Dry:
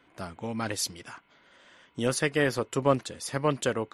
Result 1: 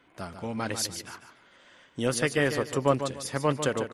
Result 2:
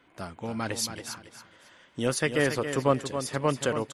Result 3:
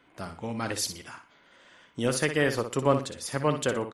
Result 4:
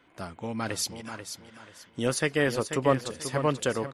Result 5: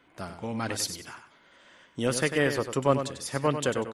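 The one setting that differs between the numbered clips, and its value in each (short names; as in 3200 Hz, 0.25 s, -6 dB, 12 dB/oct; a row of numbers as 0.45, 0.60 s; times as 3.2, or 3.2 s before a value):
feedback echo, time: 147, 276, 60, 487, 96 ms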